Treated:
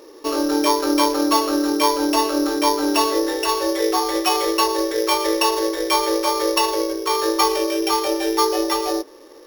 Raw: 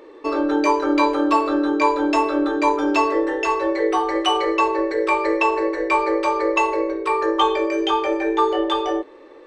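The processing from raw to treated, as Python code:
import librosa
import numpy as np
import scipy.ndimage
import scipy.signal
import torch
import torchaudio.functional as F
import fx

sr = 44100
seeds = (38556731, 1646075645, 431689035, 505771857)

y = np.r_[np.sort(x[:len(x) // 8 * 8].reshape(-1, 8), axis=1).ravel(), x[len(x) // 8 * 8:]]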